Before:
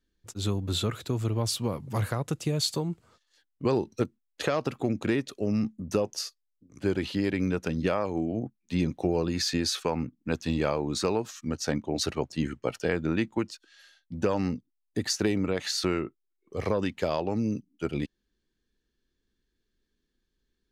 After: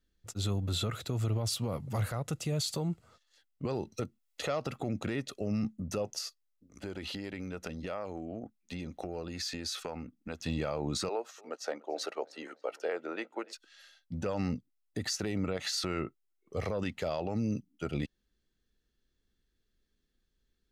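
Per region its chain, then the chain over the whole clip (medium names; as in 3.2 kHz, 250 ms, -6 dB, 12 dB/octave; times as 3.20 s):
3.93–4.59 s: band-stop 1.6 kHz, Q 11 + tape noise reduction on one side only encoder only
6.18–10.41 s: compression 4:1, threshold -33 dBFS + peaking EQ 130 Hz -12.5 dB 0.57 oct
11.09–13.53 s: high-pass 400 Hz 24 dB/octave + treble shelf 2.1 kHz -10.5 dB + filtered feedback delay 290 ms, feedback 46%, low-pass 4.8 kHz, level -23 dB
whole clip: comb 1.5 ms, depth 31%; peak limiter -22.5 dBFS; trim -1 dB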